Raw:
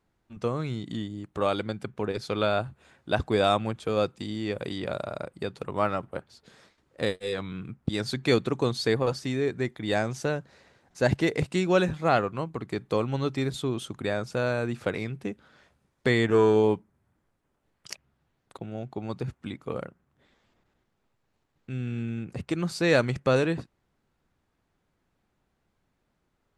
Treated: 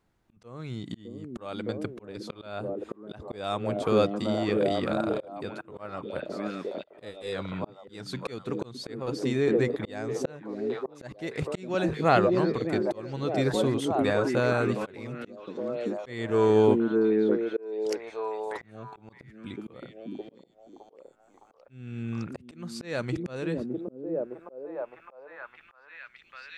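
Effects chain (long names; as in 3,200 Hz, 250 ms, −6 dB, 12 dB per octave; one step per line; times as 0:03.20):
echo through a band-pass that steps 612 ms, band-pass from 280 Hz, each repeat 0.7 octaves, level 0 dB
volume swells 541 ms
level +1.5 dB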